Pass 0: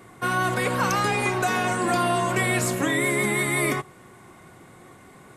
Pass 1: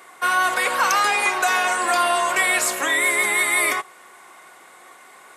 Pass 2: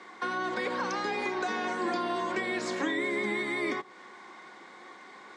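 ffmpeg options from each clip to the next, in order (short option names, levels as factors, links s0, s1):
-af "highpass=750,volume=2.11"
-filter_complex "[0:a]highpass=120,equalizer=f=210:t=q:w=4:g=9,equalizer=f=320:t=q:w=4:g=5,equalizer=f=650:t=q:w=4:g=-7,equalizer=f=1300:t=q:w=4:g=-6,equalizer=f=2700:t=q:w=4:g=-8,lowpass=f=5300:w=0.5412,lowpass=f=5300:w=1.3066,acrossover=split=490[s0][s1];[s1]acompressor=threshold=0.0224:ratio=6[s2];[s0][s2]amix=inputs=2:normalize=0"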